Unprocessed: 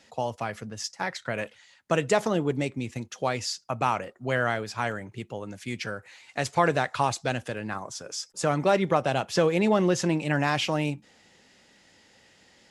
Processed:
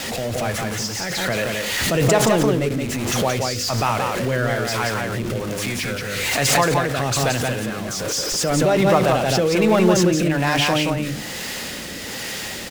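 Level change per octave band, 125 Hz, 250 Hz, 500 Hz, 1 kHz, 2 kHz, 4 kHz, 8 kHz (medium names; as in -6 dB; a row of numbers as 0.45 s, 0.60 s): +9.0 dB, +8.0 dB, +7.0 dB, +5.5 dB, +8.0 dB, +11.5 dB, +13.5 dB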